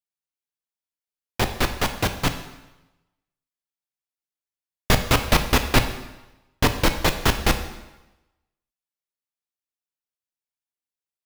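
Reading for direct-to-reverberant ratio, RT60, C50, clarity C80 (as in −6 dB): 7.0 dB, 1.0 s, 10.0 dB, 12.0 dB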